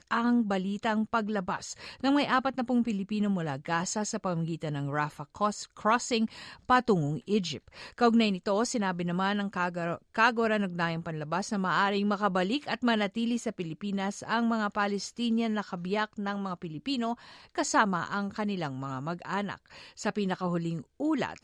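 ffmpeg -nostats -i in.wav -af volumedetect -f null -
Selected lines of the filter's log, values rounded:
mean_volume: -29.7 dB
max_volume: -9.7 dB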